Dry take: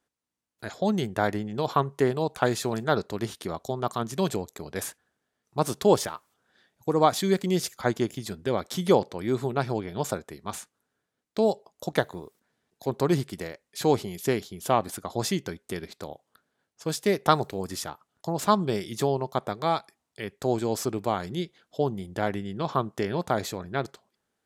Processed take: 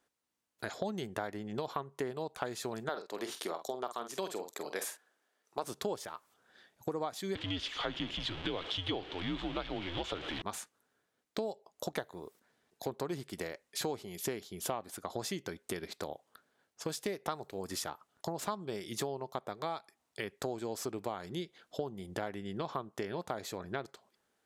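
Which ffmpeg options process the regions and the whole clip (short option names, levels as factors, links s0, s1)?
-filter_complex "[0:a]asettb=1/sr,asplit=3[s0][s1][s2];[s0]atrim=end=2.894[s3];[s1]atrim=start=2.89:end=5.64,asetpts=PTS-STARTPTS,afade=t=in:d=0.004:c=qsin,afade=t=out:st=2.746:d=0.004:c=qsin,highpass=340,asplit=2[s4][s5];[s5]adelay=47,volume=0.316[s6];[s4][s6]amix=inputs=2:normalize=0,atrim=end_sample=121275[s7];[s2]atrim=start=5.636[s8];[s3][s7]acrossfade=d=0.004:c1=hsin:c2=qsin[s9];[s9][s8]acrossfade=d=0.004:c1=qsin:c2=hsin,asettb=1/sr,asplit=3[s10][s11][s12];[s10]atrim=end=7.354[s13];[s11]atrim=start=7.35:end=10.42,asetpts=PTS-STARTPTS,afade=t=in:d=0.004:c=qsin,afade=t=out:st=3.066:d=0.004:c=qsin,aeval=exprs='val(0)+0.5*0.0266*sgn(val(0))':c=same,lowpass=f=3300:t=q:w=4.6,afreqshift=-85[s14];[s12]atrim=start=10.416[s15];[s13][s14]acrossfade=d=0.004:c1=hsin:c2=qsin[s16];[s16][s15]acrossfade=d=0.004:c1=qsin:c2=hsin,bass=f=250:g=-6,treble=f=4000:g=-1,acompressor=threshold=0.0141:ratio=6,volume=1.33"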